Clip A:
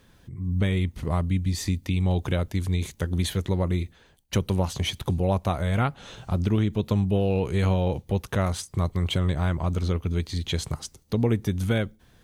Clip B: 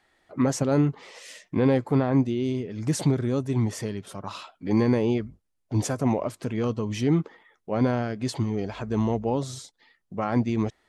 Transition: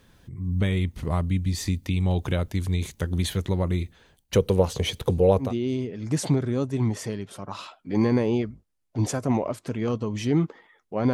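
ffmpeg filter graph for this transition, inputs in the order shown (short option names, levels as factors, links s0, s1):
-filter_complex "[0:a]asettb=1/sr,asplit=3[s0][s1][s2];[s0]atrim=end=4.354[s3];[s1]atrim=start=4.35:end=5.54,asetpts=PTS-STARTPTS,afade=t=in:d=0.004:c=qsin,afade=t=out:st=1.186:d=0.004:c=qsin,equalizer=f=470:t=o:w=0.46:g=14[s4];[s2]atrim=start=5.536[s5];[s3][s4]acrossfade=d=0.004:c1=hsin:c2=qsin[s6];[s6][s5]acrossfade=d=0.004:c1=qsin:c2=hsin,apad=whole_dur=11.13,atrim=end=11.13,atrim=end=5.54,asetpts=PTS-STARTPTS[s7];[1:a]atrim=start=2.14:end=7.89,asetpts=PTS-STARTPTS[s8];[s7][s8]acrossfade=d=0.16:c1=tri:c2=tri"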